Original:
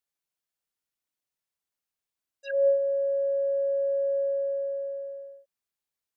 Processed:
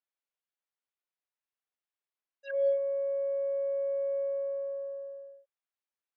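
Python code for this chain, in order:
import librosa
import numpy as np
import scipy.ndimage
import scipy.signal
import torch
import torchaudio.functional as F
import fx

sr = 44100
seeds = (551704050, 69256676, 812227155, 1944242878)

y = fx.cheby_harmonics(x, sr, harmonics=(8,), levels_db=(-41,), full_scale_db=-16.0)
y = fx.bandpass_edges(y, sr, low_hz=430.0, high_hz=3000.0)
y = y * 10.0 ** (-3.5 / 20.0)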